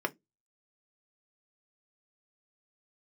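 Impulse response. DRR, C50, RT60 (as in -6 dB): 3.5 dB, 27.5 dB, 0.15 s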